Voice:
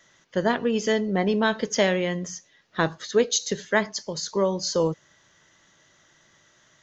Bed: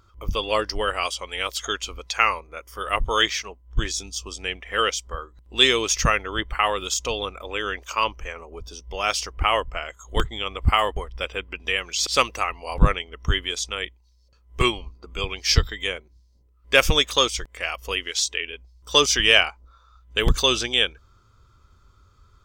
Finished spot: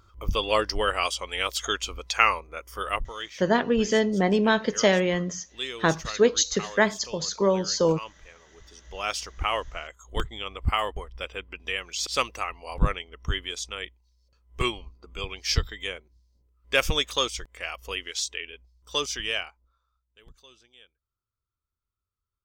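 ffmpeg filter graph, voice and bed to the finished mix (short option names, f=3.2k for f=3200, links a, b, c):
-filter_complex "[0:a]adelay=3050,volume=1dB[a];[1:a]volume=10dB,afade=t=out:st=2.8:d=0.33:silence=0.158489,afade=t=in:st=8.54:d=0.48:silence=0.298538,afade=t=out:st=18.18:d=1.97:silence=0.0398107[b];[a][b]amix=inputs=2:normalize=0"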